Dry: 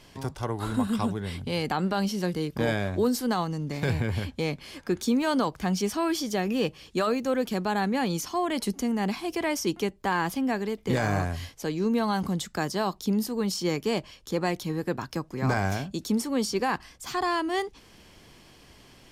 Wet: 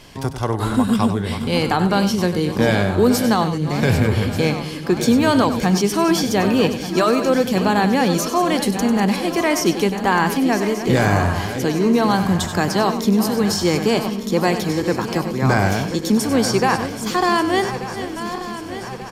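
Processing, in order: regenerating reverse delay 0.593 s, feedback 74%, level -11 dB; on a send: echo 97 ms -11 dB; on the sum: gain +9 dB

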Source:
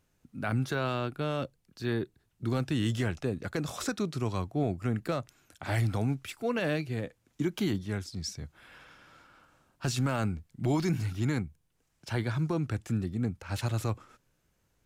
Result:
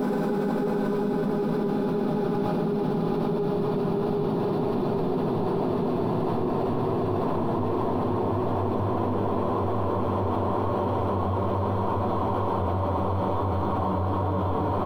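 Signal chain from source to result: Wiener smoothing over 25 samples; sample leveller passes 2; bell 6700 Hz -12.5 dB 0.49 oct; notches 60/120/180/240 Hz; doubler 12 ms -13 dB; small resonant body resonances 940/3500 Hz, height 8 dB; Paulstretch 33×, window 0.50 s, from 4; graphic EQ 125/2000/4000/8000 Hz -12/-8/-9/-11 dB; fast leveller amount 100%; gain +1.5 dB

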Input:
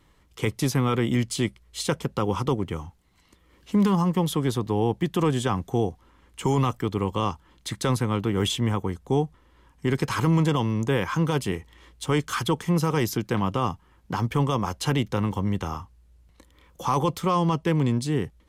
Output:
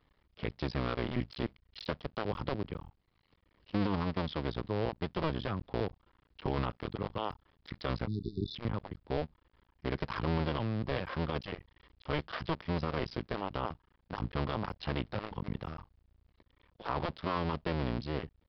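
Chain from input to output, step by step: cycle switcher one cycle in 2, muted; spectral delete 8.07–8.55, 410–3500 Hz; downsampling 11025 Hz; gain -8 dB

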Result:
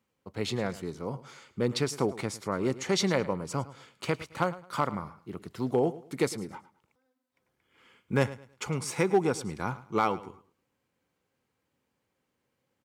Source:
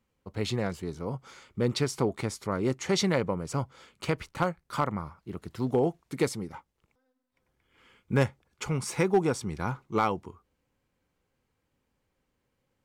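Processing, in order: HPF 79 Hz; low shelf 110 Hz -6.5 dB; feedback echo 0.107 s, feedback 27%, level -17 dB

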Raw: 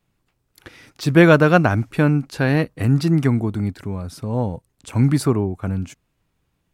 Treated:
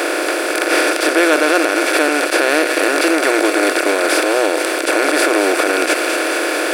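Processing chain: per-bin compression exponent 0.2; high shelf 2300 Hz +8 dB; on a send: thin delay 0.223 s, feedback 62%, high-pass 1800 Hz, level -7 dB; on the sum: limiter -2.5 dBFS, peak gain reduction 11.5 dB; brick-wall FIR high-pass 280 Hz

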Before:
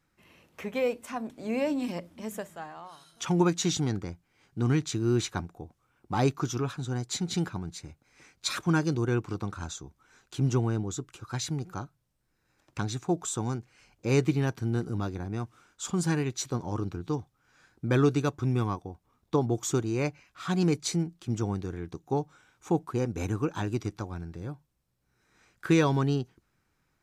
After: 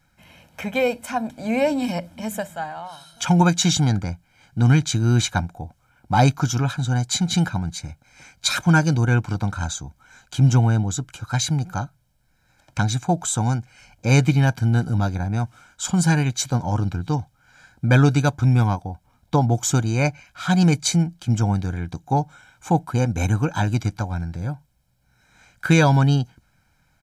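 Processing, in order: comb 1.3 ms, depth 73%; gain +8 dB

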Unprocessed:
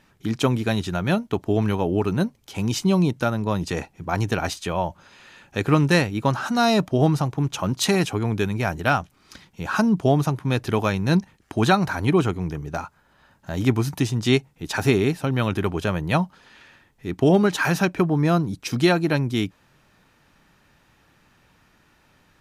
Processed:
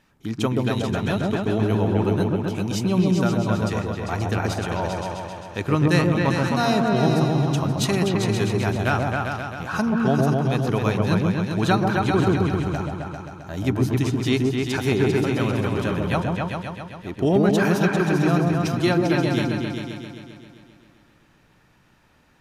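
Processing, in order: repeats that get brighter 0.132 s, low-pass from 750 Hz, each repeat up 2 oct, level 0 dB; gain -3.5 dB

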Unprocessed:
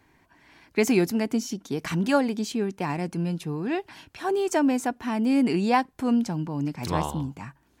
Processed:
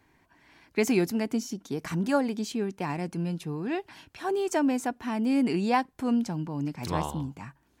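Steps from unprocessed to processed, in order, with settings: 1.42–2.25 dynamic EQ 3100 Hz, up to -6 dB, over -46 dBFS, Q 1.2; gain -3 dB

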